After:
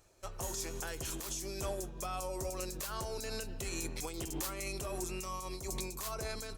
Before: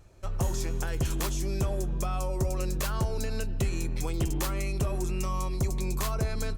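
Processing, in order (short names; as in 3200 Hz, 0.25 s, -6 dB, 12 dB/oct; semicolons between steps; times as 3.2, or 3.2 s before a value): tone controls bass -11 dB, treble +7 dB; limiter -26 dBFS, peak gain reduction 11.5 dB; noise-modulated level, depth 65%; gain +1 dB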